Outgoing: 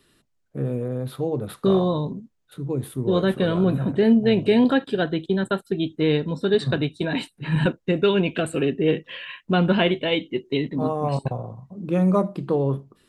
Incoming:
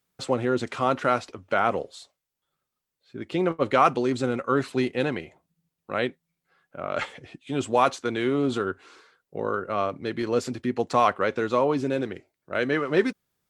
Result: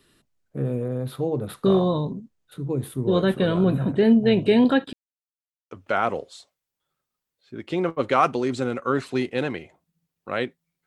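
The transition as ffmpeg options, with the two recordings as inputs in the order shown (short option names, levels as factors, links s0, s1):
-filter_complex "[0:a]apad=whole_dur=10.86,atrim=end=10.86,asplit=2[s0][s1];[s0]atrim=end=4.93,asetpts=PTS-STARTPTS,afade=t=out:st=4.926:d=0.004:c=hsin[s2];[s1]atrim=start=4.93:end=5.71,asetpts=PTS-STARTPTS,volume=0[s3];[1:a]atrim=start=1.33:end=6.48,asetpts=PTS-STARTPTS,afade=t=in:d=0.004:c=hsin[s4];[s2][s3][s4]concat=n=3:v=0:a=1"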